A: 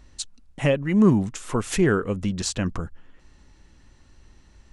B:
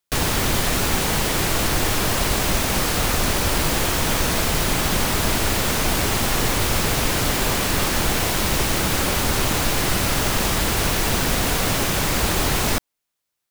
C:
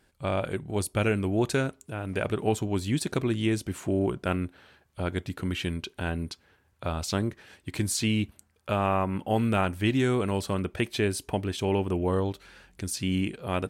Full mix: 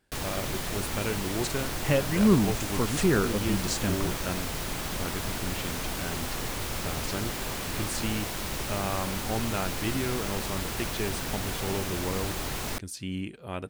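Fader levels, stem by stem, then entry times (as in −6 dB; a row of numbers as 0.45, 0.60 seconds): −4.0, −12.5, −6.5 decibels; 1.25, 0.00, 0.00 seconds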